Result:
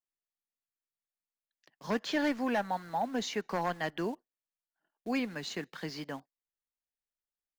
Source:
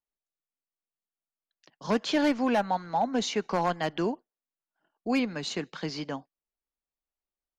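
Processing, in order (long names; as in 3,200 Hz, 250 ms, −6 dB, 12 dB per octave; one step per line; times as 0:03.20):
parametric band 1,800 Hz +6.5 dB 0.35 octaves
in parallel at −7 dB: bit reduction 7 bits
on the sum: level −9 dB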